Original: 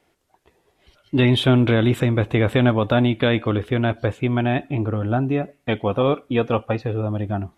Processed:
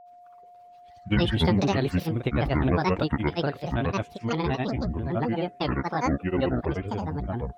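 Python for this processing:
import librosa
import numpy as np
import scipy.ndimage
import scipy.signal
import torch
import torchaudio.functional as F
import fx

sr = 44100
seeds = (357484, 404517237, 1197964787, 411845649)

y = fx.granulator(x, sr, seeds[0], grain_ms=100.0, per_s=23.0, spray_ms=100.0, spread_st=12)
y = y + 10.0 ** (-43.0 / 20.0) * np.sin(2.0 * np.pi * 710.0 * np.arange(len(y)) / sr)
y = F.gain(torch.from_numpy(y), -4.5).numpy()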